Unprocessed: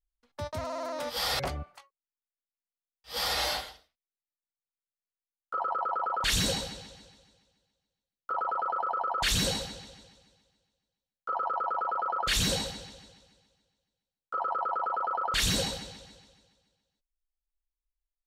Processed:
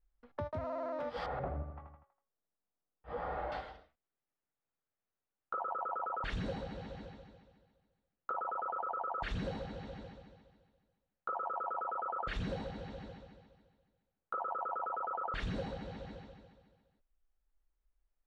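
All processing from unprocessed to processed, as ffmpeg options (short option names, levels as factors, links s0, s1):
-filter_complex "[0:a]asettb=1/sr,asplit=3[s0][s1][s2];[s0]atrim=end=1.264[s3];[s1]atrim=start=1.26:end=3.52,asetpts=PTS-STARTPTS,afade=t=in:d=0.004:c=qsin,afade=t=out:st=2.256:d=0.004:c=qsin,lowpass=1300,aecho=1:1:81|162|243|324|405:0.335|0.144|0.0619|0.0266|0.0115,atrim=end_sample=99666[s4];[s2]atrim=start=3.516[s5];[s3][s4]acrossfade=d=0.004:c1=hsin:c2=qsin[s6];[s6][s5]acrossfade=d=0.004:c1=qsin:c2=hsin,lowpass=1400,equalizer=f=1000:w=4.7:g=-3.5,acompressor=threshold=0.00282:ratio=3,volume=3.16"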